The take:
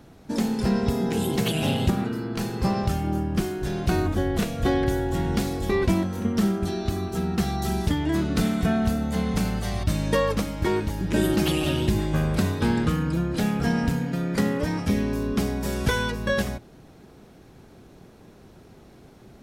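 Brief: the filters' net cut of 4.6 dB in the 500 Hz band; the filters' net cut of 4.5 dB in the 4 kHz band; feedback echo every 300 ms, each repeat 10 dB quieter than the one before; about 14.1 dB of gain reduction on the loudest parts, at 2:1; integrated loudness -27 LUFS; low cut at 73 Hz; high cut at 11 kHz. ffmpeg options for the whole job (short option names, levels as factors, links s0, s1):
-af "highpass=73,lowpass=11000,equalizer=f=500:t=o:g=-6.5,equalizer=f=4000:t=o:g=-6,acompressor=threshold=0.00447:ratio=2,aecho=1:1:300|600|900|1200:0.316|0.101|0.0324|0.0104,volume=4.22"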